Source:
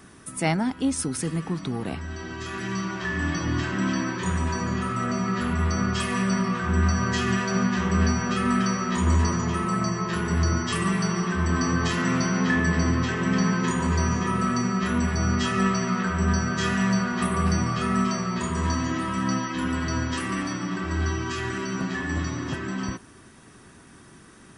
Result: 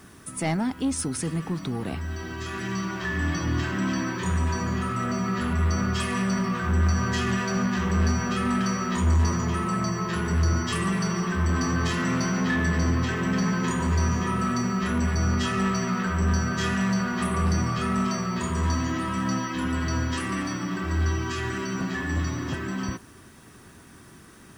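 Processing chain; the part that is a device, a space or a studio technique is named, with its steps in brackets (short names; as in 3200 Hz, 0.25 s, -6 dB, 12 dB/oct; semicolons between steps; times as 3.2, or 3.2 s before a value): open-reel tape (soft clip -18 dBFS, distortion -17 dB; bell 82 Hz +3.5 dB; white noise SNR 38 dB)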